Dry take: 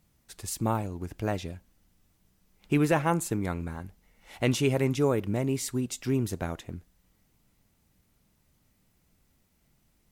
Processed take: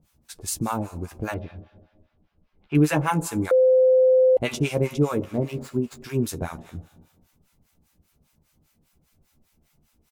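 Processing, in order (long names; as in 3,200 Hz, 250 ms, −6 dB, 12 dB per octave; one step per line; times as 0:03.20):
0:05.24–0:06.04: running median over 15 samples
notch filter 1,900 Hz, Q 15
double-tracking delay 13 ms −6.5 dB
four-comb reverb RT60 1.5 s, combs from 26 ms, DRR 13.5 dB
two-band tremolo in antiphase 5 Hz, depth 100%, crossover 780 Hz
0:01.34–0:02.75: high-frequency loss of the air 330 metres
0:03.51–0:04.37: beep over 515 Hz −19.5 dBFS
level +6.5 dB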